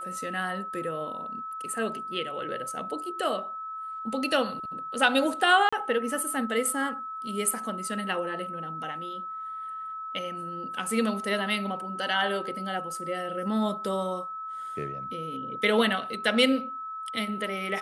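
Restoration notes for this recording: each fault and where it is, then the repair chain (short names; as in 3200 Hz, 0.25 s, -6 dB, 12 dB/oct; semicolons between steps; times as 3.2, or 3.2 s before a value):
tone 1300 Hz -34 dBFS
5.69–5.72 gap 35 ms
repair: notch 1300 Hz, Q 30; interpolate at 5.69, 35 ms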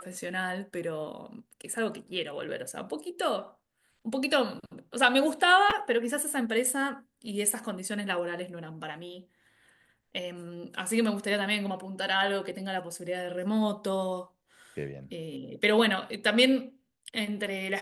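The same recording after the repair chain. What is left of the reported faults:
none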